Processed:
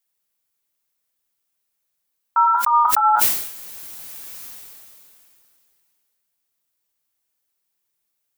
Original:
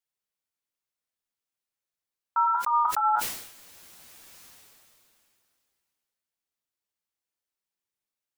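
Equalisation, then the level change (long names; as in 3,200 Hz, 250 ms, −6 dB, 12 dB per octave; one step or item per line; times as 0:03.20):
high-shelf EQ 10,000 Hz +11 dB
+7.5 dB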